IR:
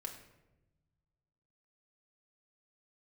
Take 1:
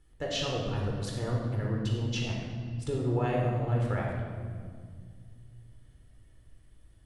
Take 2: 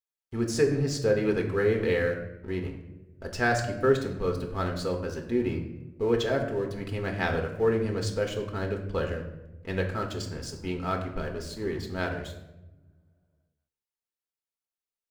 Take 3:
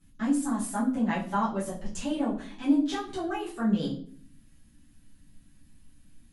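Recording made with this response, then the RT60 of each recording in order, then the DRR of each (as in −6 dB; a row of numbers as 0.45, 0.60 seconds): 2; 1.9, 1.0, 0.50 seconds; −1.5, 2.0, −9.5 decibels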